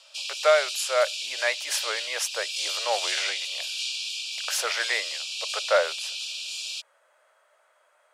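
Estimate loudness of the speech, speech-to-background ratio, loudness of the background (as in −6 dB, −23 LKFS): −27.5 LKFS, 2.0 dB, −29.5 LKFS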